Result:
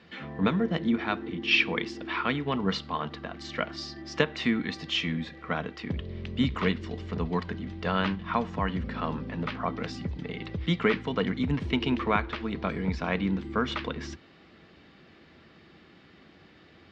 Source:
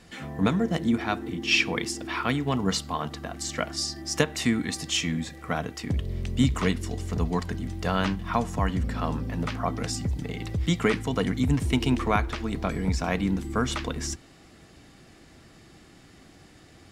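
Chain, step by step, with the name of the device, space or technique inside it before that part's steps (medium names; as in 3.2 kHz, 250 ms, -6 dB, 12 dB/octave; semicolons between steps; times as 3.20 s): guitar cabinet (cabinet simulation 96–4000 Hz, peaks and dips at 120 Hz -10 dB, 280 Hz -4 dB, 730 Hz -5 dB)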